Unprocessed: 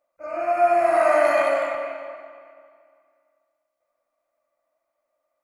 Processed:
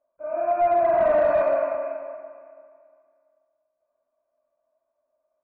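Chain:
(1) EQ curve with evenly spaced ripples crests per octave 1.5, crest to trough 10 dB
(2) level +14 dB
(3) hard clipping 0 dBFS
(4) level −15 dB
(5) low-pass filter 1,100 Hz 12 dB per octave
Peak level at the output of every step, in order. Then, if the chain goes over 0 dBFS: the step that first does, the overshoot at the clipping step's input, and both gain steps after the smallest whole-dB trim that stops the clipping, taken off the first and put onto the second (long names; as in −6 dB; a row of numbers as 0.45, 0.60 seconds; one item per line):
−4.0, +10.0, 0.0, −15.0, −14.5 dBFS
step 2, 10.0 dB
step 2 +4 dB, step 4 −5 dB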